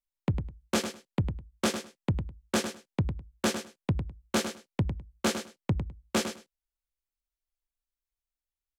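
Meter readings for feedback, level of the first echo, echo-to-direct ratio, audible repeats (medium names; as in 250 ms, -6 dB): 16%, -9.0 dB, -9.0 dB, 2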